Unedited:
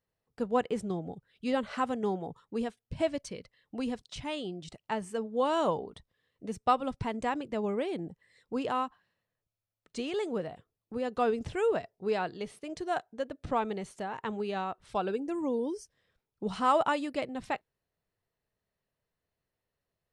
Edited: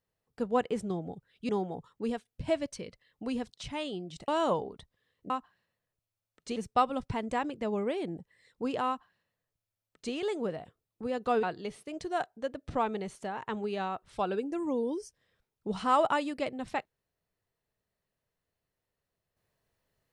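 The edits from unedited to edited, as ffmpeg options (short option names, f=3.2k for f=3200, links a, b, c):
-filter_complex "[0:a]asplit=6[a][b][c][d][e][f];[a]atrim=end=1.492[g];[b]atrim=start=2.008:end=4.802[h];[c]atrim=start=5.448:end=6.472[i];[d]atrim=start=8.778:end=10.042[j];[e]atrim=start=6.468:end=11.342[k];[f]atrim=start=12.188[l];[g][h]acrossfade=d=0.004:c1=hsin:c2=hsin[m];[m][i]acrossfade=d=0.004:c1=hsin:c2=hsin[n];[n][j]acrossfade=d=0.004:c1=hsin:c2=hsin[o];[o][k]acrossfade=d=0.004:c1=hsin:c2=hsin[p];[p][l]acrossfade=d=0.004:c1=hsin:c2=hsin"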